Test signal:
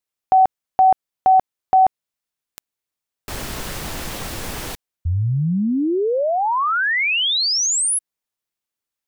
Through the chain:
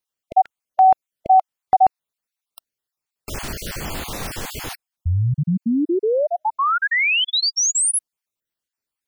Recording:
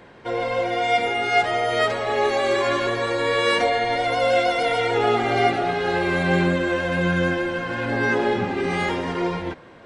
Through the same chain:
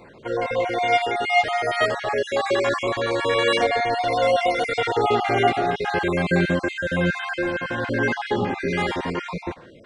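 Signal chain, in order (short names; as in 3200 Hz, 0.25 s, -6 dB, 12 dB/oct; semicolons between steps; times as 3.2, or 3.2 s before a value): random spectral dropouts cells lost 34%; gain +1 dB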